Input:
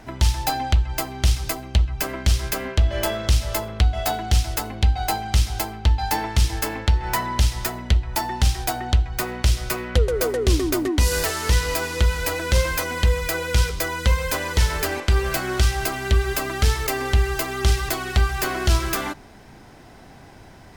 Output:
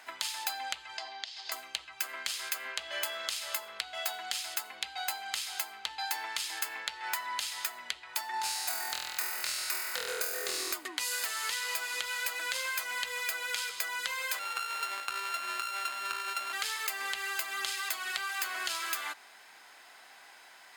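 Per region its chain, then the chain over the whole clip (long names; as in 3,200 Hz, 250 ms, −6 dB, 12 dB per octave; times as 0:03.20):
0:00.97–0:01.52: downward compressor 12 to 1, threshold −26 dBFS + loudspeaker in its box 360–5,200 Hz, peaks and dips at 510 Hz −4 dB, 720 Hz +6 dB, 1,300 Hz −10 dB, 2,400 Hz −6 dB, 4,800 Hz +4 dB
0:08.31–0:10.74: parametric band 3,200 Hz −10 dB 0.29 octaves + square-wave tremolo 8.1 Hz, depth 60%, duty 80% + flutter between parallel walls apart 4.1 metres, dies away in 0.98 s
0:14.39–0:16.53: samples sorted by size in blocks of 32 samples + low-pass filter 3,500 Hz 6 dB per octave
whole clip: high-pass filter 1,300 Hz 12 dB per octave; notch filter 5,700 Hz, Q 8.3; downward compressor, threshold −31 dBFS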